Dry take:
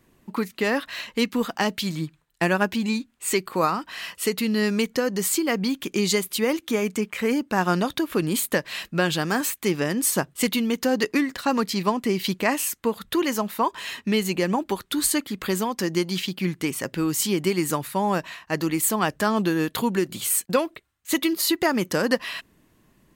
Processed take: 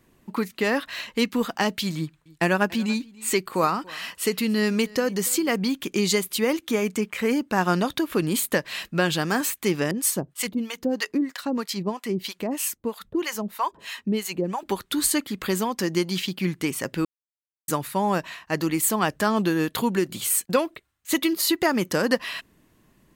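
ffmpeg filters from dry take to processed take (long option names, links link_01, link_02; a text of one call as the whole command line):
ffmpeg -i in.wav -filter_complex "[0:a]asettb=1/sr,asplit=3[link_01][link_02][link_03];[link_01]atrim=end=1.974[link_04];[link_02]atrim=start=1.97:end=5.56,asetpts=PTS-STARTPTS,afade=type=in:duration=0.004:curve=qsin,afade=type=out:start_time=3.586:duration=0.004:curve=qsin,aecho=1:1:286:0.0708,atrim=end_sample=158319[link_05];[link_03]atrim=start=5.556[link_06];[link_04][link_05]acrossfade=duration=0.004:curve1=hsin:curve2=qsin[link_07];[link_07][link_06]acrossfade=duration=0.004:curve1=qsin:curve2=hsin,asettb=1/sr,asplit=3[link_08][link_09][link_10];[link_08]atrim=end=9.914[link_11];[link_09]atrim=start=9.91:end=14.63,asetpts=PTS-STARTPTS,afade=type=in:duration=0.004:curve=qsin,afade=type=out:start_time=4.716:duration=0.004:curve=qsin,acrossover=split=640[link_12][link_13];[link_12]aeval=exprs='val(0)*(1-1/2+1/2*cos(2*PI*3.1*n/s))':channel_layout=same[link_14];[link_13]aeval=exprs='val(0)*(1-1/2-1/2*cos(2*PI*3.1*n/s))':channel_layout=same[link_15];[link_14][link_15]amix=inputs=2:normalize=0[link_16];[link_10]atrim=start=14.626[link_17];[link_11][link_16]acrossfade=duration=0.004:curve1=hsin:curve2=qsin[link_18];[link_18][link_17]acrossfade=duration=0.004:curve1=qsin:curve2=hsin,asplit=3[link_19][link_20][link_21];[link_19]atrim=end=17.05,asetpts=PTS-STARTPTS,afade=type=out:start_time=17.046:duration=0.004:curve=hsin[link_22];[link_20]atrim=start=17.05:end=17.68,asetpts=PTS-STARTPTS,volume=0[link_23];[link_21]atrim=start=17.68,asetpts=PTS-STARTPTS,afade=type=in:duration=0.004:curve=hsin[link_24];[link_22][link_23][link_24]concat=n=3:v=0:a=1" out.wav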